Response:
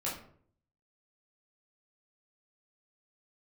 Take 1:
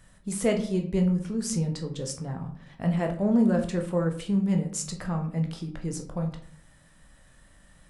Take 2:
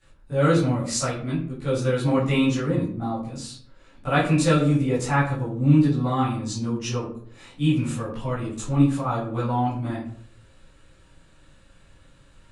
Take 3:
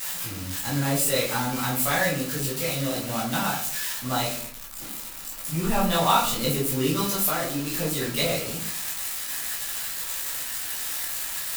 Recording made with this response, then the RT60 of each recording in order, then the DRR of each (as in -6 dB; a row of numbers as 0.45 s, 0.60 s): 3; 0.55 s, 0.55 s, 0.55 s; 3.0 dB, -14.0 dB, -7.0 dB